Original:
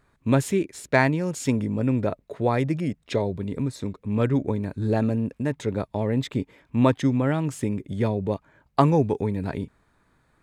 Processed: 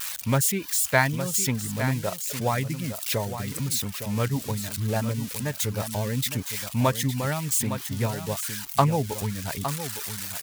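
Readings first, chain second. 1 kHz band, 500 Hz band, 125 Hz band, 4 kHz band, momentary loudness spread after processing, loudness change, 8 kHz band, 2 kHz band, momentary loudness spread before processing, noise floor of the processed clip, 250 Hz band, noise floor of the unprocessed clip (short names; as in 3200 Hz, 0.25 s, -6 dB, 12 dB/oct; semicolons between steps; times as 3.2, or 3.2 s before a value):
0.0 dB, -4.5 dB, -1.5 dB, +8.5 dB, 8 LU, -1.0 dB, +14.0 dB, +1.5 dB, 9 LU, -38 dBFS, -6.0 dB, -66 dBFS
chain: switching spikes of -20 dBFS; reverb removal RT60 0.7 s; bell 340 Hz -12.5 dB 1.1 oct; echo 0.861 s -10 dB; Doppler distortion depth 0.11 ms; gain +1.5 dB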